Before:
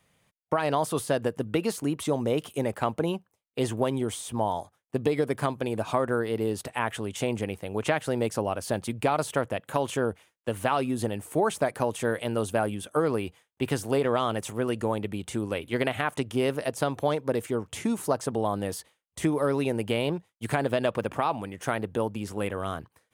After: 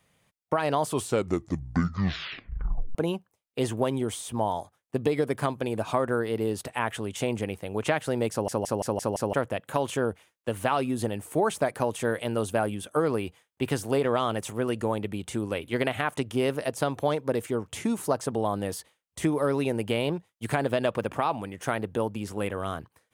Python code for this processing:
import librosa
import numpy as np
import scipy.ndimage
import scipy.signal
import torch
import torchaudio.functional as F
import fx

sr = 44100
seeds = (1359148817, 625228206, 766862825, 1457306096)

y = fx.edit(x, sr, fx.tape_stop(start_s=0.79, length_s=2.16),
    fx.stutter_over(start_s=8.31, slice_s=0.17, count=6), tone=tone)